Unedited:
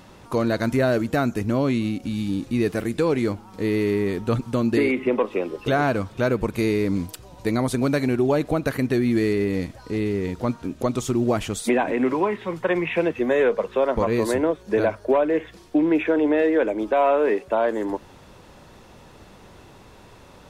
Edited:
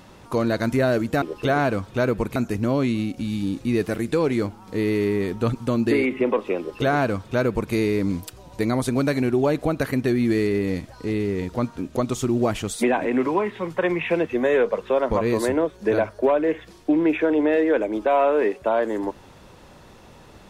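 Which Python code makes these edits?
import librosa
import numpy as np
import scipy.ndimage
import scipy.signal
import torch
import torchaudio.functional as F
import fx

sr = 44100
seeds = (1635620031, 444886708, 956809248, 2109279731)

y = fx.edit(x, sr, fx.duplicate(start_s=5.45, length_s=1.14, to_s=1.22), tone=tone)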